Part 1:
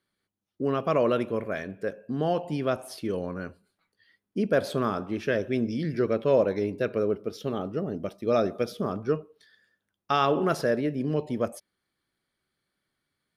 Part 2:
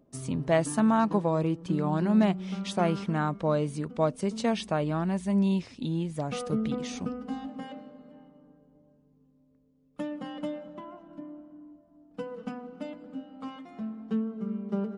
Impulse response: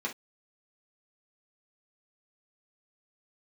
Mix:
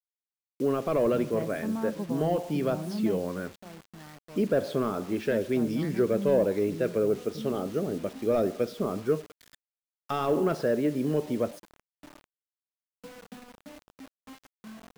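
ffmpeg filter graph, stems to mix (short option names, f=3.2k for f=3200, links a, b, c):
-filter_complex "[0:a]asplit=2[a][b];[b]highpass=f=720:p=1,volume=13dB,asoftclip=type=tanh:threshold=-10.5dB[c];[a][c]amix=inputs=2:normalize=0,lowpass=f=4k:p=1,volume=-6dB,volume=1dB[d];[1:a]adelay=850,volume=3dB,afade=t=out:st=2.98:d=0.59:silence=0.237137,afade=t=in:st=4.98:d=0.32:silence=0.298538[e];[d][e]amix=inputs=2:normalize=0,highshelf=f=8.9k:g=-4.5,acrossover=split=500[f][g];[g]acompressor=threshold=-55dB:ratio=1.5[h];[f][h]amix=inputs=2:normalize=0,acrusher=bits=7:mix=0:aa=0.000001"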